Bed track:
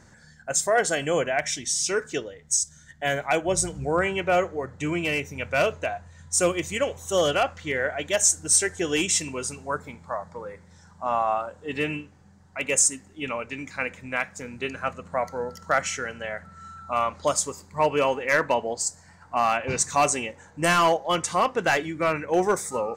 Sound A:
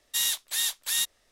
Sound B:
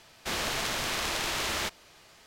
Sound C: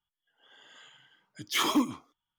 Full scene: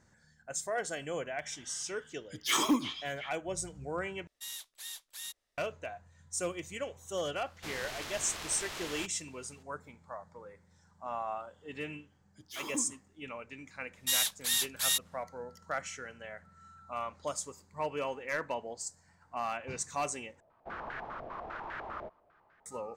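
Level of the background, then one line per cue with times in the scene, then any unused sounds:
bed track −13 dB
0:00.94: mix in C −2 dB + echo through a band-pass that steps 360 ms, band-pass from 3,300 Hz, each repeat −0.7 octaves, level −7.5 dB
0:04.27: overwrite with A −16.5 dB
0:07.37: mix in B −11 dB
0:10.99: mix in C −12.5 dB + parametric band 2,000 Hz −6 dB 1.7 octaves
0:13.93: mix in A −2.5 dB
0:20.40: overwrite with B −12.5 dB + low-pass on a step sequencer 10 Hz 630–1,600 Hz

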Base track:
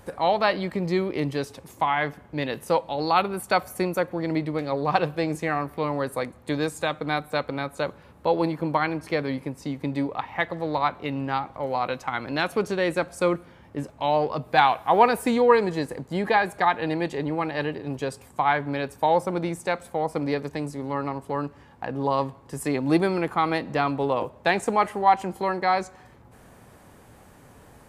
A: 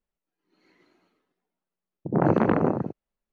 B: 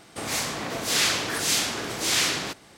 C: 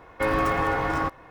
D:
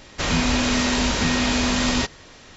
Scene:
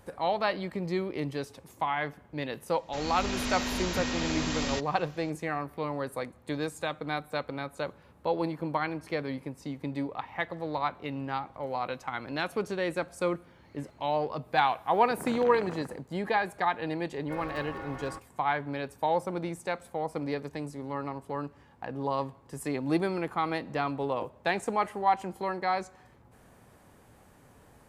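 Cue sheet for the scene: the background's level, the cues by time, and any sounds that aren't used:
base track −6.5 dB
0:02.74: mix in D −18 dB + automatic gain control
0:13.05: mix in A −15 dB + every bin compressed towards the loudest bin 2 to 1
0:17.10: mix in C −16.5 dB
not used: B

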